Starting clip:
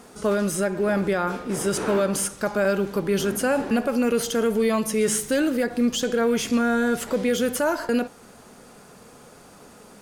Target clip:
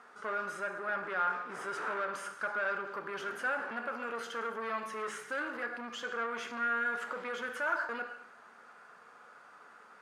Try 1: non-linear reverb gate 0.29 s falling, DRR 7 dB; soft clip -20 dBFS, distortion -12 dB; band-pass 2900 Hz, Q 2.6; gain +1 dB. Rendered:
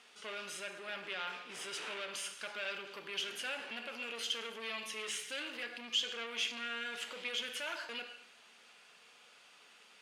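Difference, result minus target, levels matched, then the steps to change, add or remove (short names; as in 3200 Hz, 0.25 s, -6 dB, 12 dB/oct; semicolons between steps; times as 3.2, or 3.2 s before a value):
4000 Hz band +16.0 dB
change: band-pass 1400 Hz, Q 2.6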